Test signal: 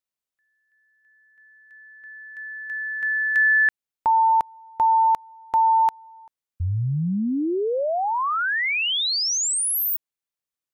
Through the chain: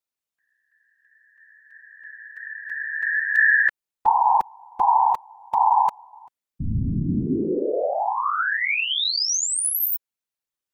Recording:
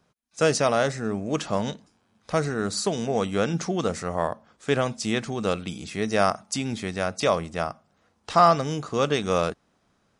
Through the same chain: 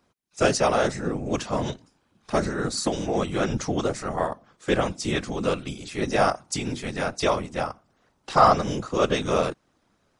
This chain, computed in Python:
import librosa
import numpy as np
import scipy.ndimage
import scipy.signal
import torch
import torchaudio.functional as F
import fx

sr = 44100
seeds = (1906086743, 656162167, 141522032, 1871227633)

y = fx.whisperise(x, sr, seeds[0])